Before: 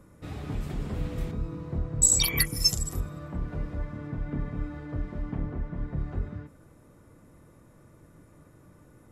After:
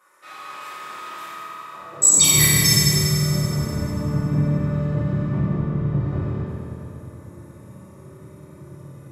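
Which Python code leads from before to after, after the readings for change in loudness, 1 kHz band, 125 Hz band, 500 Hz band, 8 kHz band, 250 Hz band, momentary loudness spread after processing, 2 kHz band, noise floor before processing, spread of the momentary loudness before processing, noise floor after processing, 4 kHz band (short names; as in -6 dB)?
+11.0 dB, +12.5 dB, +12.0 dB, +9.5 dB, +9.5 dB, +11.5 dB, 22 LU, +10.5 dB, -56 dBFS, 15 LU, -44 dBFS, +9.0 dB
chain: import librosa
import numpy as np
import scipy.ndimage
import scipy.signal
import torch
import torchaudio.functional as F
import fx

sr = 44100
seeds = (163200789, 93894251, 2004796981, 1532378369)

y = fx.filter_sweep_highpass(x, sr, from_hz=1200.0, to_hz=120.0, start_s=1.73, end_s=2.34, q=1.7)
y = fx.rev_fdn(y, sr, rt60_s=3.4, lf_ratio=1.0, hf_ratio=0.75, size_ms=16.0, drr_db=-9.5)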